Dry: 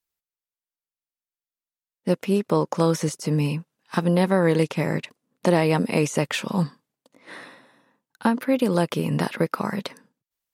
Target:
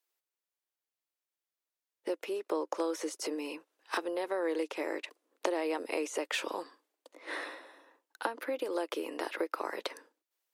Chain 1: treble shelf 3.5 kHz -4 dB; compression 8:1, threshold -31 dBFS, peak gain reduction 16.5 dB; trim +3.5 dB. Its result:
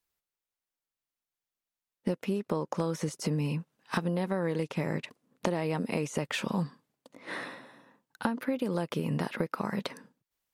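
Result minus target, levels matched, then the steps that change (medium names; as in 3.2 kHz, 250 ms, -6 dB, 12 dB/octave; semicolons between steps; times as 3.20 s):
250 Hz band +4.0 dB
add after compression: Chebyshev high-pass 310 Hz, order 5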